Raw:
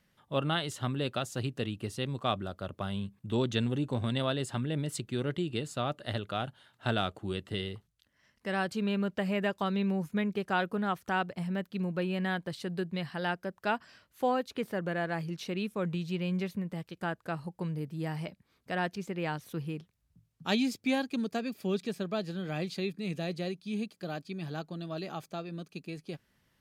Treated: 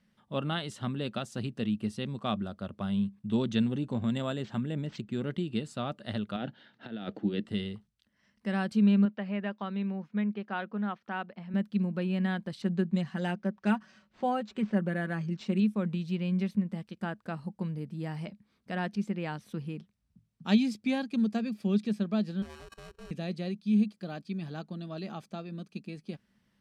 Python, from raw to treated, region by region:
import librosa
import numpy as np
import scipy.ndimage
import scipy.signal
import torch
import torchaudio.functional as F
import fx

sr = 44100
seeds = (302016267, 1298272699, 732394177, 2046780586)

y = fx.chain(x, sr, fx.peak_eq(hz=9900.0, db=-10.0, octaves=0.71),
    fx.resample_linear(factor=4), at=(3.93, 5.23))
y = fx.chain(y, sr, fx.over_compress(threshold_db=-35.0, ratio=-0.5),
    fx.cabinet(low_hz=130.0, low_slope=24, high_hz=5400.0, hz=(300.0, 480.0, 1100.0, 1800.0), db=(9, 5, -7, 5)), at=(6.36, 7.46))
y = fx.chain(y, sr, fx.highpass(hz=550.0, slope=6),
    fx.air_absorb(metres=240.0), at=(9.05, 11.54))
y = fx.chain(y, sr, fx.comb(ms=5.3, depth=0.58),
    fx.resample_linear(factor=4), at=(12.62, 15.6))
y = fx.chain(y, sr, fx.sample_sort(block=32),
    fx.level_steps(step_db=21),
    fx.ring_mod(carrier_hz=230.0), at=(22.42, 23.11))
y = scipy.signal.sosfilt(scipy.signal.butter(2, 9200.0, 'lowpass', fs=sr, output='sos'), y)
y = fx.peak_eq(y, sr, hz=210.0, db=14.5, octaves=0.32)
y = fx.notch(y, sr, hz=6800.0, q=13.0)
y = y * librosa.db_to_amplitude(-3.0)